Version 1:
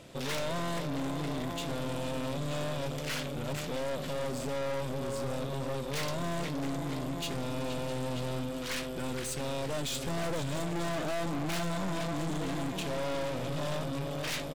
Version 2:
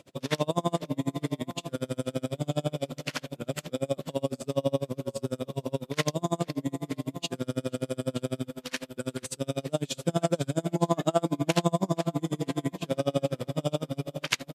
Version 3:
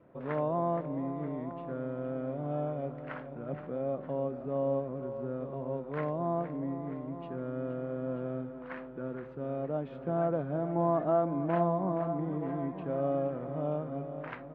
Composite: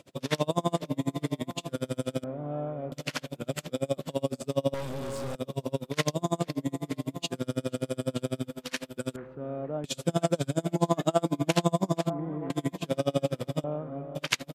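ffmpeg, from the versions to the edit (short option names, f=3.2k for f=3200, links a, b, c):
-filter_complex "[2:a]asplit=4[a][b][c][d];[1:a]asplit=6[e][f][g][h][i][j];[e]atrim=end=2.242[k];[a]atrim=start=2.238:end=2.922[l];[f]atrim=start=2.918:end=4.742[m];[0:a]atrim=start=4.738:end=5.352[n];[g]atrim=start=5.348:end=9.162[o];[b]atrim=start=9.158:end=9.842[p];[h]atrim=start=9.838:end=12.102[q];[c]atrim=start=12.098:end=12.502[r];[i]atrim=start=12.498:end=13.642[s];[d]atrim=start=13.638:end=14.152[t];[j]atrim=start=14.148[u];[k][l]acrossfade=d=0.004:c1=hsin:c2=hsin[v];[v][m]acrossfade=d=0.004:c1=hsin:c2=hsin[w];[w][n]acrossfade=d=0.004:c1=hsin:c2=hsin[x];[x][o]acrossfade=d=0.004:c1=hsin:c2=hsin[y];[y][p]acrossfade=d=0.004:c1=hsin:c2=hsin[z];[z][q]acrossfade=d=0.004:c1=hsin:c2=hsin[aa];[aa][r]acrossfade=d=0.004:c1=hsin:c2=hsin[ab];[ab][s]acrossfade=d=0.004:c1=hsin:c2=hsin[ac];[ac][t]acrossfade=d=0.004:c1=hsin:c2=hsin[ad];[ad][u]acrossfade=d=0.004:c1=hsin:c2=hsin"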